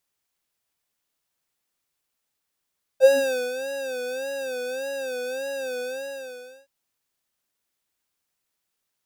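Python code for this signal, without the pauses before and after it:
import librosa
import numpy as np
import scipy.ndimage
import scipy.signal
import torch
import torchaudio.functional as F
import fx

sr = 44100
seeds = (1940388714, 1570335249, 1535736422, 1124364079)

y = fx.sub_patch_vibrato(sr, seeds[0], note=72, wave='square', wave2='triangle', interval_st=7, detune_cents=16, level2_db=-13.5, sub_db=-22, noise_db=-27, kind='highpass', cutoff_hz=110.0, q=6.0, env_oct=2.5, env_decay_s=0.26, env_sustain_pct=25, attack_ms=63.0, decay_s=0.46, sustain_db=-9.0, release_s=0.87, note_s=2.8, lfo_hz=1.7, vibrato_cents=96)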